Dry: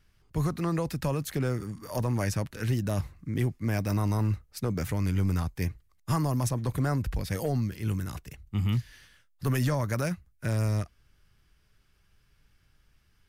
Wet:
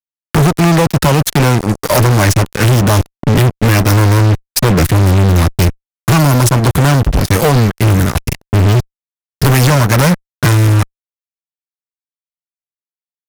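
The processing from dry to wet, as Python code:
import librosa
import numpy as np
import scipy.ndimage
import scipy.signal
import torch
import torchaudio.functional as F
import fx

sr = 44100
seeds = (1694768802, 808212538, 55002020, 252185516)

y = fx.transient(x, sr, attack_db=8, sustain_db=-9)
y = fx.fuzz(y, sr, gain_db=41.0, gate_db=-42.0)
y = F.gain(torch.from_numpy(y), 6.0).numpy()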